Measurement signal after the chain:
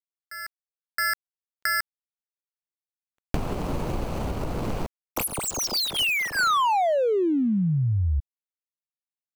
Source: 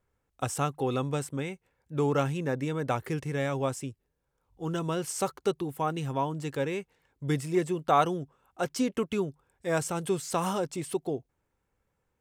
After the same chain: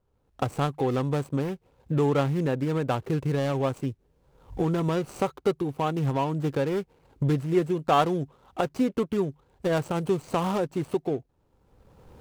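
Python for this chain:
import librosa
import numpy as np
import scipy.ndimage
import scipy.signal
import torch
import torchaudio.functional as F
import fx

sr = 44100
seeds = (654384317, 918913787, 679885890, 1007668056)

y = scipy.signal.medfilt(x, 25)
y = fx.recorder_agc(y, sr, target_db=-23.0, rise_db_per_s=26.0, max_gain_db=30)
y = y * librosa.db_to_amplitude(3.5)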